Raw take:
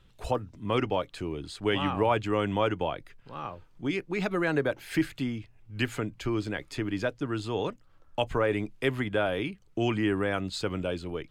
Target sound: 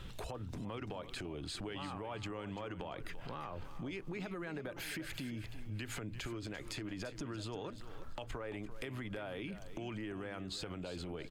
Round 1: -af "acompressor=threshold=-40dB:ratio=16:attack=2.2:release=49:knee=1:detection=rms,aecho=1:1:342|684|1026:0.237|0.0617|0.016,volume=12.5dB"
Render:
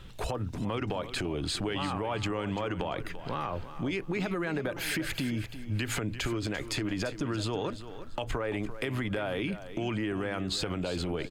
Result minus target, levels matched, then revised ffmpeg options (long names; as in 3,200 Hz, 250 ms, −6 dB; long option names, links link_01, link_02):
downward compressor: peak gain reduction −11 dB
-af "acompressor=threshold=-51.5dB:ratio=16:attack=2.2:release=49:knee=1:detection=rms,aecho=1:1:342|684|1026:0.237|0.0617|0.016,volume=12.5dB"